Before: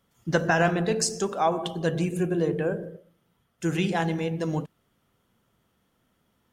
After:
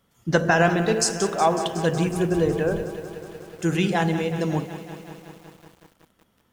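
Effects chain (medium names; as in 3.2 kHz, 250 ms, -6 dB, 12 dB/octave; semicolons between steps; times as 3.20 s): 2.06–2.82 s: wind noise 100 Hz -36 dBFS; bit-crushed delay 184 ms, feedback 80%, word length 8-bit, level -12.5 dB; trim +3.5 dB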